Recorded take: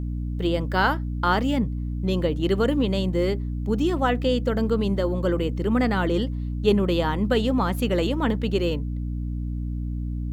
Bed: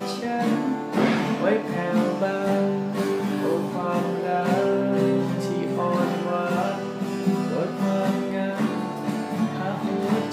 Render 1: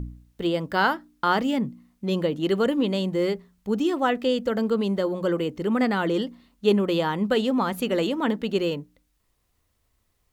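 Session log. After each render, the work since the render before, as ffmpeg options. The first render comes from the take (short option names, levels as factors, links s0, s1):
-af "bandreject=f=60:t=h:w=4,bandreject=f=120:t=h:w=4,bandreject=f=180:t=h:w=4,bandreject=f=240:t=h:w=4,bandreject=f=300:t=h:w=4"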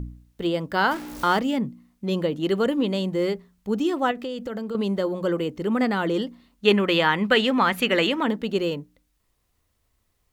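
-filter_complex "[0:a]asettb=1/sr,asplit=3[s0][s1][s2];[s0]atrim=end=0.914[s3];[s1]atrim=start=0.91:end=1.39,asetpts=PTS-STARTPTS,afade=t=in:d=0.004:c=qsin,afade=t=out:st=0.476:d=0.004:c=qsin,aeval=exprs='val(0)+0.5*0.0266*sgn(val(0))':c=same[s4];[s2]atrim=start=1.386[s5];[s3][s4]acrossfade=d=0.004:c1=hsin:c2=qsin[s6];[s6][s5]acrossfade=d=0.004:c1=qsin:c2=hsin,asettb=1/sr,asplit=3[s7][s8][s9];[s7]atrim=end=4.114[s10];[s8]atrim=start=4.11:end=4.75,asetpts=PTS-STARTPTS,afade=t=in:d=0.004:c=qsin,afade=t=out:st=0.636:d=0.004:c=qsin,acompressor=threshold=0.0447:ratio=6:attack=3.2:release=140:knee=1:detection=peak[s11];[s9]atrim=start=4.746[s12];[s10][s11]acrossfade=d=0.004:c1=hsin:c2=qsin[s13];[s13][s12]acrossfade=d=0.004:c1=qsin:c2=hsin,asettb=1/sr,asplit=3[s14][s15][s16];[s14]atrim=end=6.654[s17];[s15]atrim=start=6.65:end=8.23,asetpts=PTS-STARTPTS,afade=t=in:d=0.004:c=qsin,afade=t=out:st=1.576:d=0.004:c=qsin,equalizer=f=2100:t=o:w=1.7:g=13[s18];[s16]atrim=start=8.226[s19];[s17][s18]acrossfade=d=0.004:c1=hsin:c2=qsin[s20];[s20][s19]acrossfade=d=0.004:c1=qsin:c2=hsin"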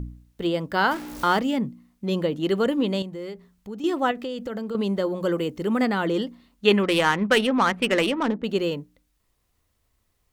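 -filter_complex "[0:a]asettb=1/sr,asplit=3[s0][s1][s2];[s0]atrim=end=3.024[s3];[s1]atrim=start=3.02:end=3.84,asetpts=PTS-STARTPTS,afade=t=in:d=0.004:c=qsin,afade=t=out:st=0.816:d=0.004:c=qsin,acompressor=threshold=0.01:ratio=2:attack=3.2:release=140:knee=1:detection=peak[s4];[s2]atrim=start=3.836[s5];[s3][s4]acrossfade=d=0.004:c1=hsin:c2=qsin[s6];[s6][s5]acrossfade=d=0.004:c1=qsin:c2=hsin,asettb=1/sr,asplit=3[s7][s8][s9];[s7]atrim=end=5.204[s10];[s8]atrim=start=5.2:end=5.86,asetpts=PTS-STARTPTS,afade=t=in:d=0.004:c=qsin,afade=t=out:st=0.656:d=0.004:c=qsin,highshelf=f=6000:g=5.5[s11];[s9]atrim=start=5.856[s12];[s10][s11]acrossfade=d=0.004:c1=hsin:c2=qsin[s13];[s13][s12]acrossfade=d=0.004:c1=qsin:c2=hsin,asettb=1/sr,asplit=3[s14][s15][s16];[s14]atrim=end=6.834[s17];[s15]atrim=start=6.83:end=8.44,asetpts=PTS-STARTPTS,afade=t=in:d=0.004:c=qsin,afade=t=out:st=1.606:d=0.004:c=qsin,adynamicsmooth=sensitivity=1.5:basefreq=1100[s18];[s16]atrim=start=8.436[s19];[s17][s18]acrossfade=d=0.004:c1=hsin:c2=qsin[s20];[s20][s19]acrossfade=d=0.004:c1=qsin:c2=hsin"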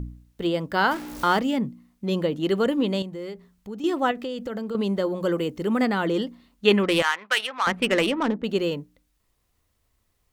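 -filter_complex "[0:a]asettb=1/sr,asplit=3[s0][s1][s2];[s0]atrim=end=7.024[s3];[s1]atrim=start=7.02:end=7.67,asetpts=PTS-STARTPTS,afade=t=in:d=0.004:c=qsin,afade=t=out:st=0.646:d=0.004:c=qsin,highpass=1100[s4];[s2]atrim=start=7.666[s5];[s3][s4]acrossfade=d=0.004:c1=hsin:c2=qsin[s6];[s6][s5]acrossfade=d=0.004:c1=qsin:c2=hsin"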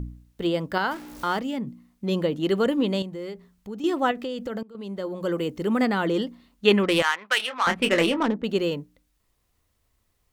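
-filter_complex "[0:a]asettb=1/sr,asplit=3[s0][s1][s2];[s0]atrim=end=7.374[s3];[s1]atrim=start=7.37:end=8.26,asetpts=PTS-STARTPTS,afade=t=in:d=0.004:c=qsin,afade=t=out:st=0.886:d=0.004:c=qsin,asplit=2[s4][s5];[s5]adelay=24,volume=0.447[s6];[s4][s6]amix=inputs=2:normalize=0,atrim=end_sample=39249[s7];[s2]atrim=start=8.256[s8];[s3][s7]acrossfade=d=0.004:c1=hsin:c2=qsin[s9];[s9][s8]acrossfade=d=0.004:c1=qsin:c2=hsin,asplit=4[s10][s11][s12][s13];[s10]atrim=end=0.782[s14];[s11]atrim=start=0.778:end=1.672,asetpts=PTS-STARTPTS,volume=0.562[s15];[s12]atrim=start=1.668:end=4.63,asetpts=PTS-STARTPTS,afade=t=out:st=2.958:d=0.004:c=hsin:silence=0.0749894[s16];[s13]atrim=start=4.63,asetpts=PTS-STARTPTS,afade=t=in:d=0.9:silence=0.0749894[s17];[s14][s15]acrossfade=d=0.004:c1=hsin:c2=hsin[s18];[s16][s17]concat=n=2:v=0:a=1[s19];[s18][s19]acrossfade=d=0.004:c1=hsin:c2=hsin"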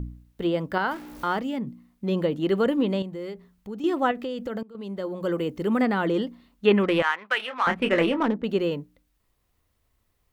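-filter_complex "[0:a]equalizer=f=7000:t=o:w=1.7:g=-4,acrossover=split=3000[s0][s1];[s1]acompressor=threshold=0.00631:ratio=4:attack=1:release=60[s2];[s0][s2]amix=inputs=2:normalize=0"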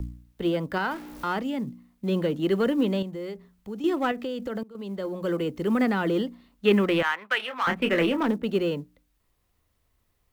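-filter_complex "[0:a]acrossover=split=240|470|1200[s0][s1][s2][s3];[s2]asoftclip=type=tanh:threshold=0.0316[s4];[s0][s1][s4][s3]amix=inputs=4:normalize=0,acrusher=bits=9:mode=log:mix=0:aa=0.000001"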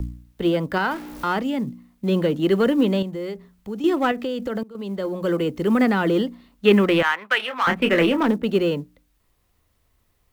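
-af "volume=1.78"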